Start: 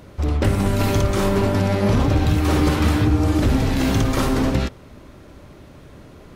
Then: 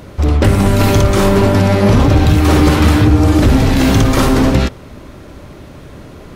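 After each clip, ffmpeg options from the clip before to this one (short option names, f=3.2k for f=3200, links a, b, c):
-af "acontrast=62,volume=2.5dB"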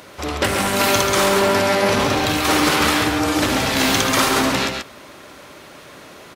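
-af "highpass=f=1.2k:p=1,aecho=1:1:137:0.531,volume=2.5dB"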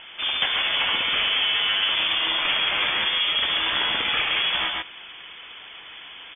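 -af "acompressor=threshold=-19dB:ratio=6,lowpass=f=3.1k:t=q:w=0.5098,lowpass=f=3.1k:t=q:w=0.6013,lowpass=f=3.1k:t=q:w=0.9,lowpass=f=3.1k:t=q:w=2.563,afreqshift=-3600"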